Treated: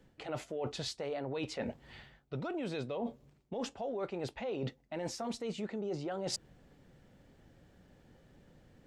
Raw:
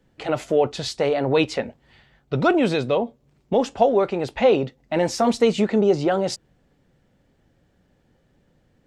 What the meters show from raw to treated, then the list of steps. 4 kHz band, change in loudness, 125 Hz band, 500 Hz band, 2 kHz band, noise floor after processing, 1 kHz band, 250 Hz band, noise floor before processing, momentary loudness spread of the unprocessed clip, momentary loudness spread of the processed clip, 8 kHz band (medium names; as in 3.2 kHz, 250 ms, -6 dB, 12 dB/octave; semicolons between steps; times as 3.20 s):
-12.5 dB, -18.0 dB, -14.0 dB, -19.0 dB, -17.5 dB, -68 dBFS, -19.0 dB, -17.0 dB, -64 dBFS, 9 LU, 5 LU, -10.0 dB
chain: peak limiter -13.5 dBFS, peak gain reduction 8.5 dB; reverse; compression 12:1, threshold -36 dBFS, peak gain reduction 19 dB; reverse; trim +1 dB